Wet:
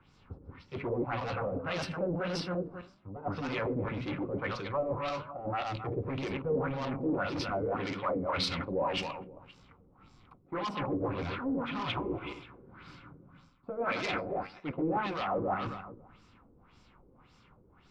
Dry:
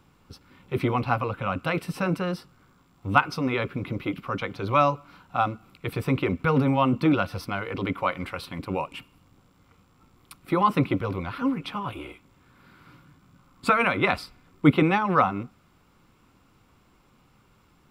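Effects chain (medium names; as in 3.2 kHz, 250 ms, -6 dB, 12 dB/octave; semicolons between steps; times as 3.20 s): backward echo that repeats 134 ms, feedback 42%, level -3.5 dB; dynamic bell 590 Hz, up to +5 dB, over -35 dBFS, Q 1.8; reverse; compression 8:1, threshold -31 dBFS, peak gain reduction 19.5 dB; reverse; flange 0.88 Hz, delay 6.3 ms, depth 7.9 ms, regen -84%; saturation -39.5 dBFS, distortion -9 dB; LFO low-pass sine 1.8 Hz 430–5800 Hz; three bands expanded up and down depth 40%; trim +8.5 dB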